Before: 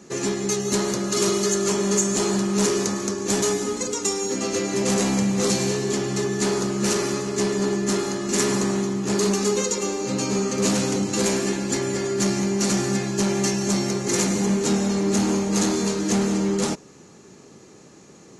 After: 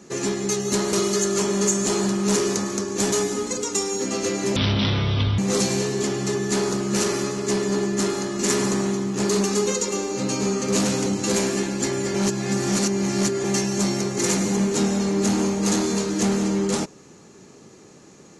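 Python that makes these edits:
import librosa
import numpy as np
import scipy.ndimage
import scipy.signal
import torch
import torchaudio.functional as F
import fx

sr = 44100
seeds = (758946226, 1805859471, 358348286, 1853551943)

y = fx.edit(x, sr, fx.cut(start_s=0.93, length_s=0.3),
    fx.speed_span(start_s=4.86, length_s=0.42, speed=0.51),
    fx.reverse_span(start_s=12.04, length_s=1.3), tone=tone)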